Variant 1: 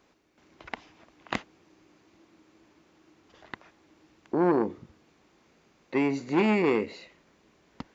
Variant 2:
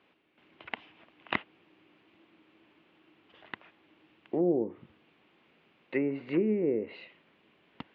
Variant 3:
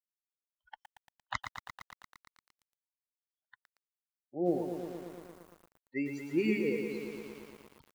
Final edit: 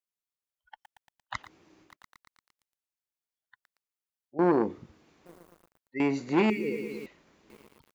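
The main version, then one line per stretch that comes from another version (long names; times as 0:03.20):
3
0:01.44–0:01.89: punch in from 1, crossfade 0.16 s
0:04.39–0:05.26: punch in from 1
0:06.00–0:06.50: punch in from 1
0:07.06–0:07.50: punch in from 1
not used: 2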